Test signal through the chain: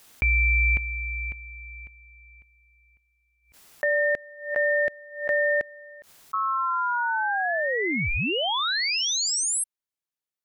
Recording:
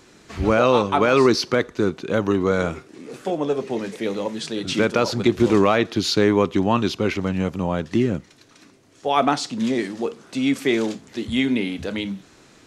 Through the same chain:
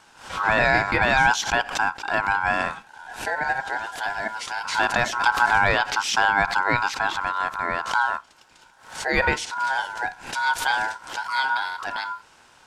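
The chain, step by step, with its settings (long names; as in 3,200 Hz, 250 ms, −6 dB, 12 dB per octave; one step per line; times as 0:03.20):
ring modulation 1,200 Hz
background raised ahead of every attack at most 110 dB per second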